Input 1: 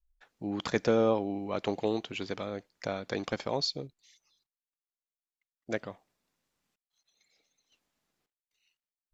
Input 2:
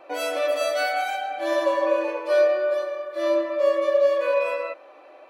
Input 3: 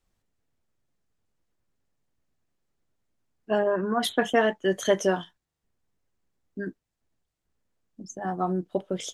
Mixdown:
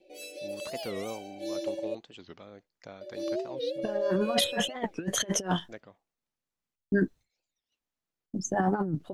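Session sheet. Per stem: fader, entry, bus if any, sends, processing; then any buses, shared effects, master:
-12.0 dB, 0.00 s, no send, dry
-4.5 dB, 0.00 s, muted 1.95–3.01, no send, Chebyshev band-stop 370–3700 Hz, order 2; comb 5.3 ms, depth 88%; rotary speaker horn 0.6 Hz
+1.5 dB, 0.35 s, no send, expander -51 dBFS; low shelf 120 Hz +9 dB; negative-ratio compressor -29 dBFS, ratio -0.5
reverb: off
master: record warp 45 rpm, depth 250 cents

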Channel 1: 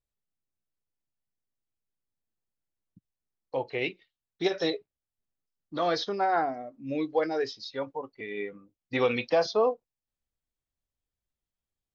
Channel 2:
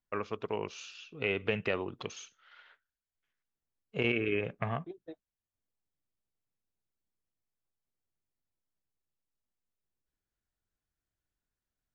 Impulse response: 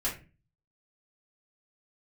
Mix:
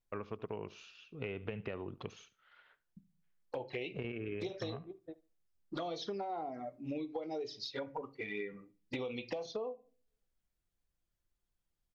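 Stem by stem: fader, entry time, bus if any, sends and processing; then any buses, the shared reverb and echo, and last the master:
+2.0 dB, 0.00 s, send -16 dB, no echo send, compressor 2:1, threshold -31 dBFS, peak gain reduction 7 dB; envelope flanger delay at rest 5.8 ms, full sweep at -29 dBFS
-5.0 dB, 0.00 s, no send, echo send -21 dB, LPF 6100 Hz; tilt -2 dB/oct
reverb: on, RT60 0.30 s, pre-delay 3 ms
echo: feedback echo 73 ms, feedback 22%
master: compressor 12:1, threshold -36 dBFS, peak gain reduction 14 dB

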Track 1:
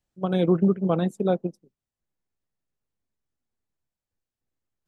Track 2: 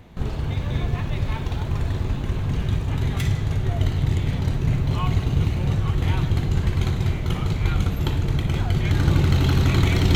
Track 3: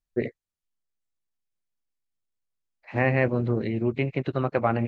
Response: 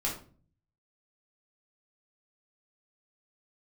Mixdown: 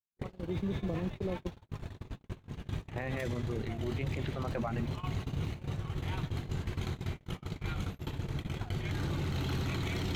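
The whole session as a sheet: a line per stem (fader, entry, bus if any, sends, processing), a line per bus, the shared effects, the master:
-13.5 dB, 0.00 s, no send, treble ducked by the level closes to 380 Hz, closed at -18.5 dBFS; AGC gain up to 13.5 dB; synth low-pass 1800 Hz, resonance Q 2
-6.0 dB, 0.00 s, no send, dry
-3.0 dB, 0.00 s, no send, reverb removal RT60 1.3 s; sustainer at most 82 dB/s; auto duck -12 dB, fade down 0.25 s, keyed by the first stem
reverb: off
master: gate -26 dBFS, range -55 dB; low shelf 110 Hz -8 dB; limiter -26 dBFS, peak gain reduction 14.5 dB

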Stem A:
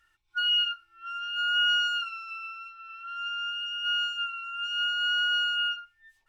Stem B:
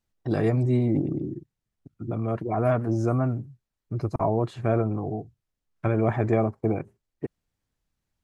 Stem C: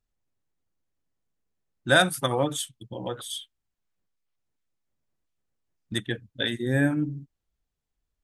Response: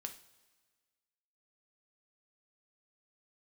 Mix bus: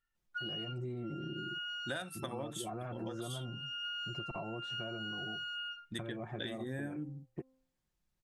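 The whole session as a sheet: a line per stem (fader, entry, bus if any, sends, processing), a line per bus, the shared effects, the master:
-0.5 dB, 0.00 s, bus A, no send, gate with hold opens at -54 dBFS; auto duck -11 dB, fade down 1.05 s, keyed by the third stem
-5.0 dB, 0.15 s, bus A, no send, comb 5.6 ms, depth 57%
-9.5 dB, 0.00 s, no bus, no send, notches 60/120 Hz
bus A: 0.0 dB, de-hum 261.5 Hz, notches 5; compressor, threshold -37 dBFS, peak gain reduction 15.5 dB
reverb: off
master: compressor 10:1, threshold -36 dBFS, peak gain reduction 14 dB

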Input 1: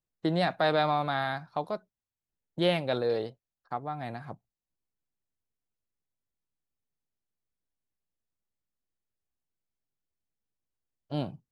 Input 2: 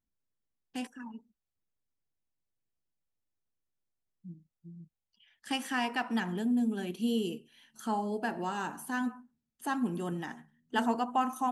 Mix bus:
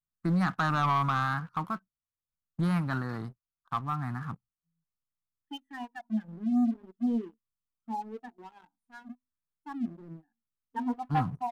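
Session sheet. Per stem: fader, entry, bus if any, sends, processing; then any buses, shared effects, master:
0.0 dB, 0.00 s, no send, EQ curve 170 Hz 0 dB, 290 Hz -6 dB, 490 Hz -30 dB, 1200 Hz +4 dB, 3100 Hz -29 dB, 7800 Hz -13 dB
-6.5 dB, 0.00 s, no send, notches 50/100/150/200/250 Hz; spectral expander 2.5:1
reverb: off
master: high shelf 2700 Hz +7.5 dB; sample leveller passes 2; vibrato 0.76 Hz 86 cents

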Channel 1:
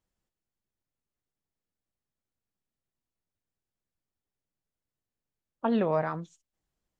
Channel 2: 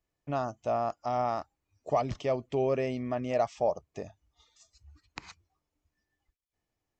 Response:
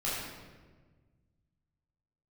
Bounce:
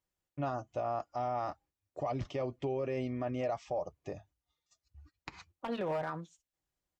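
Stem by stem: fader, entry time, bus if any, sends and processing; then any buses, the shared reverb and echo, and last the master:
-1.5 dB, 0.00 s, no send, low shelf 380 Hz -4.5 dB; hard clip -22 dBFS, distortion -16 dB
-0.5 dB, 0.10 s, no send, gate -58 dBFS, range -16 dB; high shelf 6000 Hz -9.5 dB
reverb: off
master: notch comb 220 Hz; limiter -26.5 dBFS, peak gain reduction 9 dB

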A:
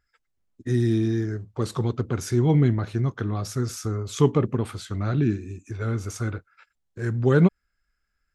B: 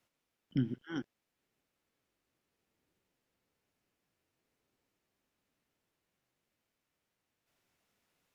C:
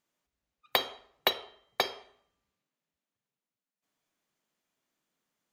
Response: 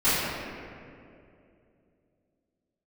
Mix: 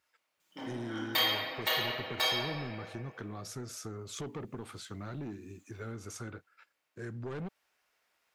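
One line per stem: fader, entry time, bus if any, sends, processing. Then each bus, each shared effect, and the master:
-6.5 dB, 0.00 s, bus A, no send, Bessel high-pass 170 Hz, order 2
-5.0 dB, 0.00 s, no bus, send -7 dB, one-sided fold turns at -28 dBFS; HPF 660 Hz 12 dB/oct
+0.5 dB, 0.40 s, bus A, send -21 dB, tilt shelf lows -6 dB; comb 6.3 ms, depth 96%
bus A: 0.0 dB, soft clip -28.5 dBFS, distortion -5 dB; compressor, threshold -38 dBFS, peak gain reduction 7.5 dB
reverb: on, RT60 2.6 s, pre-delay 3 ms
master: dry

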